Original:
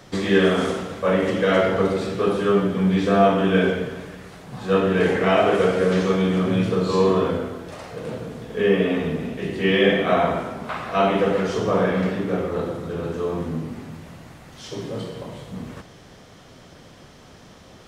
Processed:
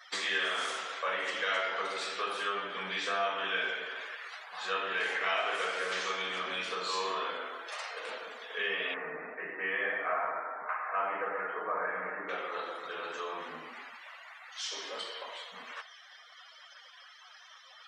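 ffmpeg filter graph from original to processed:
-filter_complex "[0:a]asettb=1/sr,asplit=3[a][b][c];[a]atrim=end=8.944[d];[b]atrim=start=8.94:end=12.29,asetpts=PTS-STARTPTS,afade=t=in:d=0.004:c=qsin,afade=t=out:st=3.346:d=0.004:c=qsin,lowpass=f=1.8k:w=0.5412,lowpass=f=1.8k:w=1.3066,aecho=1:1:6.5:0.3,atrim=end_sample=147735[e];[c]atrim=start=12.286[f];[d][e]acrossfade=d=0.004:c1=hsin:c2=qsin[g];[g][f]acrossfade=d=0.004:c1=qsin:c2=hsin,highpass=1.3k,afftdn=nr=25:nf=-52,acompressor=threshold=-43dB:ratio=2,volume=6dB"

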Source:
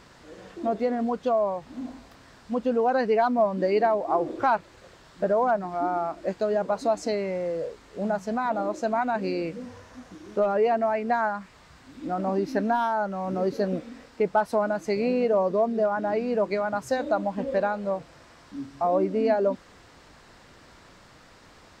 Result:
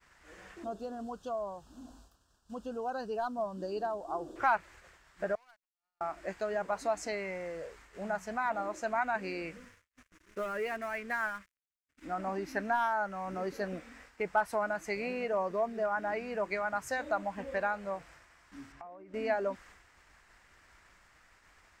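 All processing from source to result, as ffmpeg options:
-filter_complex "[0:a]asettb=1/sr,asplit=3[a][b][c];[a]atrim=end=0.644[d];[b]atrim=start=0.64:end=4.36,asetpts=PTS-STARTPTS,afade=t=in:d=0.004:c=qsin,afade=t=out:st=3.716:d=0.004:c=qsin,asuperstop=centerf=2100:order=4:qfactor=1.3,equalizer=f=1.1k:t=o:w=2.4:g=-6.5[e];[c]atrim=start=4.356[f];[d][e]acrossfade=d=0.004:c1=hsin:c2=qsin[g];[g][f]acrossfade=d=0.004:c1=qsin:c2=hsin,asettb=1/sr,asplit=3[h][i][j];[h]atrim=end=5.354[k];[i]atrim=start=5.35:end=6.01,asetpts=PTS-STARTPTS,afade=t=in:d=0.004:c=qsin,afade=t=out:st=0.656:d=0.004:c=qsin,bandpass=f=4.4k:t=q:w=6.6,aeval=exprs='sgn(val(0))*max(abs(val(0))-0.001,0)':c=same[l];[j]atrim=start=6.006[m];[k][l]acrossfade=d=0.004:c1=hsin:c2=qsin[n];[n][m]acrossfade=d=0.004:c1=qsin:c2=hsin,asettb=1/sr,asplit=3[o][p][q];[o]atrim=end=9.574[r];[p]atrim=start=9.57:end=12.05,asetpts=PTS-STARTPTS,afade=t=in:d=0.004:c=qsin,afade=t=out:st=2.476:d=0.004:c=qsin,aeval=exprs='sgn(val(0))*max(abs(val(0))-0.00501,0)':c=same,equalizer=f=790:t=o:w=0.52:g=-13.5[s];[q]atrim=start=12.046[t];[r][s]acrossfade=d=0.004:c1=hsin:c2=qsin[u];[u][t]acrossfade=d=0.004:c1=qsin:c2=hsin,asettb=1/sr,asplit=3[v][w][x];[v]atrim=end=18.724[y];[w]atrim=start=18.72:end=19.14,asetpts=PTS-STARTPTS,afade=t=in:d=0.004:c=qsin,afade=t=out:st=0.416:d=0.004:c=qsin,lowpass=f=2.9k:p=1,acompressor=threshold=-37dB:ratio=16:attack=3.2:release=140:knee=1:detection=peak[z];[x]atrim=start=19.136[aa];[y][z]acrossfade=d=0.004:c1=hsin:c2=qsin[ab];[ab][aa]acrossfade=d=0.004:c1=qsin:c2=hsin,agate=range=-33dB:threshold=-46dB:ratio=3:detection=peak,equalizer=f=125:t=o:w=1:g=-11,equalizer=f=250:t=o:w=1:g=-10,equalizer=f=500:t=o:w=1:g=-9,equalizer=f=1k:t=o:w=1:g=-3,equalizer=f=2k:t=o:w=1:g=4,equalizer=f=4k:t=o:w=1:g=-9"

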